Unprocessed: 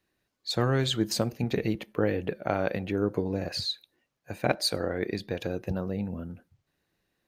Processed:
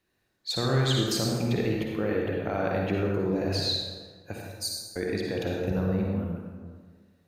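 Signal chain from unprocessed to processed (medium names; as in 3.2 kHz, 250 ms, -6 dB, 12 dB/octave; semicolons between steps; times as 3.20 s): 4.40–4.96 s: inverse Chebyshev high-pass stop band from 2.6 kHz, stop band 40 dB; peak limiter -18.5 dBFS, peak gain reduction 7.5 dB; reverberation RT60 1.6 s, pre-delay 43 ms, DRR -1.5 dB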